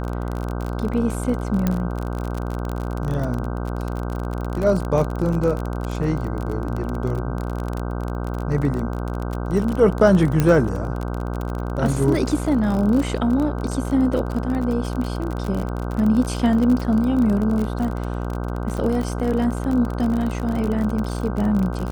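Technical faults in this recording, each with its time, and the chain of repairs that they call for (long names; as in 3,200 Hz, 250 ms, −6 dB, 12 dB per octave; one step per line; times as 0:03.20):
mains buzz 60 Hz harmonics 26 −26 dBFS
surface crackle 36 per second −24 dBFS
0:01.67: click −8 dBFS
0:04.99: drop-out 2.7 ms
0:10.40: click −6 dBFS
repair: click removal
hum removal 60 Hz, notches 26
repair the gap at 0:04.99, 2.7 ms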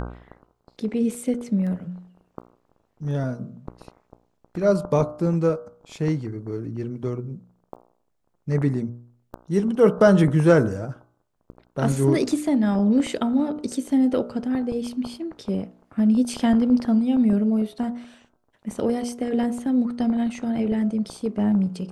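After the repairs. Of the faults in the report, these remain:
0:01.67: click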